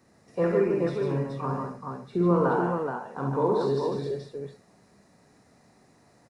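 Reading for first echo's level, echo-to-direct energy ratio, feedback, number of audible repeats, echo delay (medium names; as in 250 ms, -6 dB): -6.5 dB, 1.0 dB, no regular repeats, 4, 51 ms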